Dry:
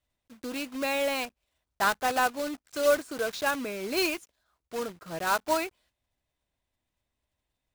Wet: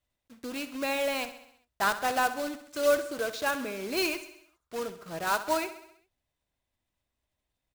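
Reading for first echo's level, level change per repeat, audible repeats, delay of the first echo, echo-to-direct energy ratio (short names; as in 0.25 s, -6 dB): -13.0 dB, -5.0 dB, 5, 66 ms, -11.5 dB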